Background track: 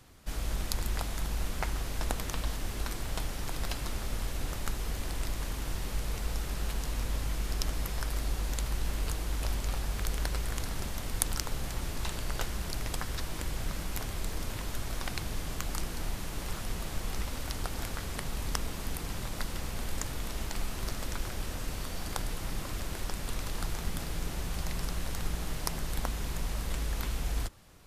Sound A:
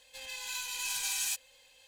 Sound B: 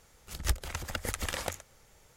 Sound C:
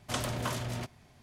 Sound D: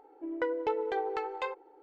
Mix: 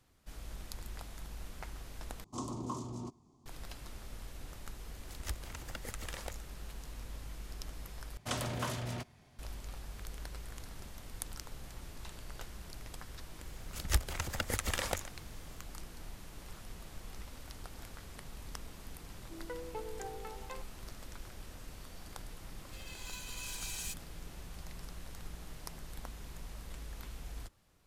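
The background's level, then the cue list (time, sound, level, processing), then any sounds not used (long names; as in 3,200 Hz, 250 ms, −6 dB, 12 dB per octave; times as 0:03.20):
background track −12.5 dB
0:02.24: overwrite with C −9 dB + drawn EQ curve 110 Hz 0 dB, 210 Hz +6 dB, 330 Hz +12 dB, 590 Hz −7 dB, 1,100 Hz +8 dB, 1,600 Hz −24 dB, 7,000 Hz +3 dB, 12,000 Hz −13 dB
0:04.80: mix in B −10 dB
0:08.17: overwrite with C −3 dB
0:13.45: mix in B −0.5 dB
0:19.08: mix in D −12.5 dB
0:22.58: mix in A −9 dB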